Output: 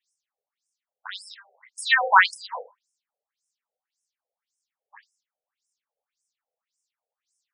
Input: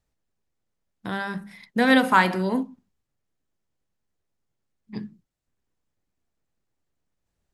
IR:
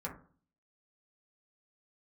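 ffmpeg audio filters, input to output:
-filter_complex "[0:a]aemphasis=mode=production:type=75fm,asplit=2[s0][s1];[1:a]atrim=start_sample=2205[s2];[s1][s2]afir=irnorm=-1:irlink=0,volume=0.211[s3];[s0][s3]amix=inputs=2:normalize=0,afftfilt=real='re*between(b*sr/1024,560*pow(7300/560,0.5+0.5*sin(2*PI*1.8*pts/sr))/1.41,560*pow(7300/560,0.5+0.5*sin(2*PI*1.8*pts/sr))*1.41)':imag='im*between(b*sr/1024,560*pow(7300/560,0.5+0.5*sin(2*PI*1.8*pts/sr))/1.41,560*pow(7300/560,0.5+0.5*sin(2*PI*1.8*pts/sr))*1.41)':win_size=1024:overlap=0.75,volume=1.41"

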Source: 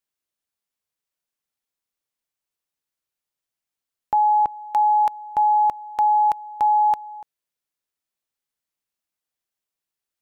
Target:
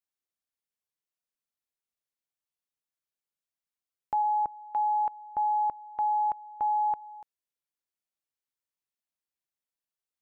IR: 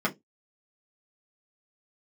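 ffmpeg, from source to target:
-filter_complex "[0:a]asplit=3[s0][s1][s2];[s0]afade=t=out:st=4.22:d=0.02[s3];[s1]lowpass=1300,afade=t=in:st=4.22:d=0.02,afade=t=out:st=7:d=0.02[s4];[s2]afade=t=in:st=7:d=0.02[s5];[s3][s4][s5]amix=inputs=3:normalize=0,volume=0.376"

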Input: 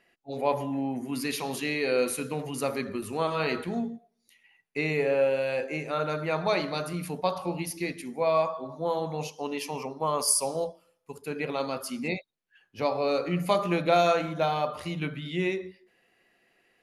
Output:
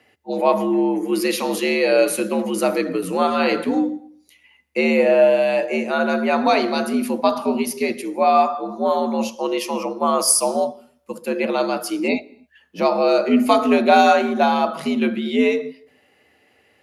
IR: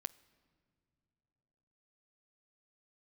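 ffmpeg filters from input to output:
-filter_complex "[0:a]afreqshift=72,asplit=2[s0][s1];[1:a]atrim=start_sample=2205,afade=t=out:st=0.33:d=0.01,atrim=end_sample=14994,lowshelf=f=360:g=10.5[s2];[s1][s2]afir=irnorm=-1:irlink=0,volume=2.66[s3];[s0][s3]amix=inputs=2:normalize=0,volume=0.841"

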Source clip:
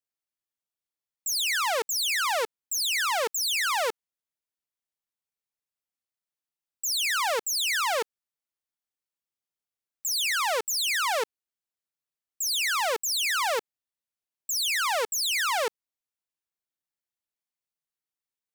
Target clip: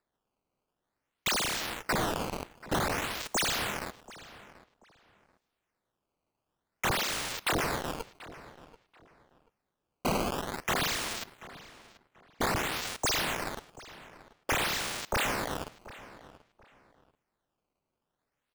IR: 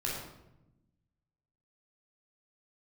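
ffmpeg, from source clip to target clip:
-filter_complex "[0:a]highshelf=f=9300:g=-9,asplit=2[s0][s1];[s1]aecho=0:1:239:0.0668[s2];[s0][s2]amix=inputs=2:normalize=0,aexciter=amount=4.7:drive=8.5:freq=12000,aderivative,acrusher=samples=14:mix=1:aa=0.000001:lfo=1:lforange=22.4:lforate=0.52,asplit=2[s3][s4];[s4]adelay=735,lowpass=f=3300:p=1,volume=0.141,asplit=2[s5][s6];[s6]adelay=735,lowpass=f=3300:p=1,volume=0.25[s7];[s5][s7]amix=inputs=2:normalize=0[s8];[s3][s8]amix=inputs=2:normalize=0,volume=0.501"

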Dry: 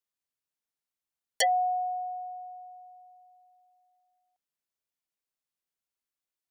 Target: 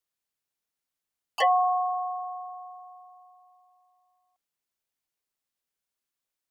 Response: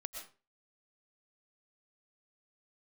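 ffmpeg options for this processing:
-filter_complex "[0:a]acrossover=split=2500[s0][s1];[s1]acompressor=threshold=0.00501:ratio=4:attack=1:release=60[s2];[s0][s2]amix=inputs=2:normalize=0,asplit=2[s3][s4];[s4]asetrate=66075,aresample=44100,atempo=0.66742,volume=0.562[s5];[s3][s5]amix=inputs=2:normalize=0,volume=1.33"

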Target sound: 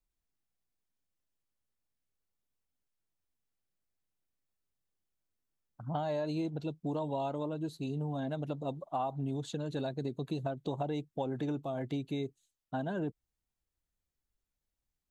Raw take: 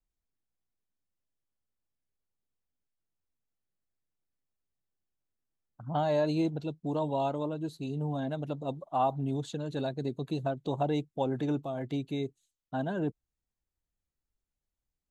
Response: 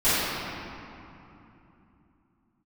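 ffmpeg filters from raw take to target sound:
-af "acompressor=threshold=0.0282:ratio=6"

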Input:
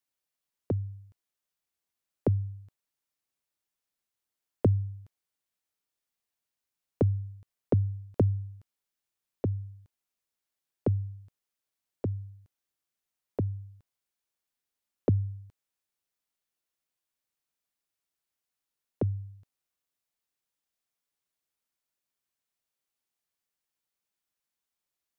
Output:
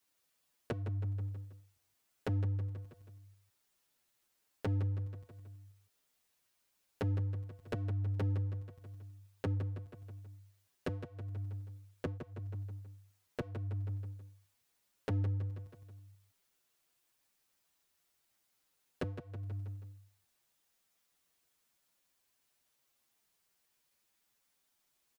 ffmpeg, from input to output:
-filter_complex "[0:a]alimiter=limit=0.106:level=0:latency=1:release=267,asoftclip=type=hard:threshold=0.0211,aecho=1:1:161|322|483|644|805:0.501|0.221|0.097|0.0427|0.0188,acompressor=threshold=0.00562:ratio=4,asplit=2[s0][s1];[s1]adelay=7.2,afreqshift=-0.86[s2];[s0][s2]amix=inputs=2:normalize=1,volume=3.76"

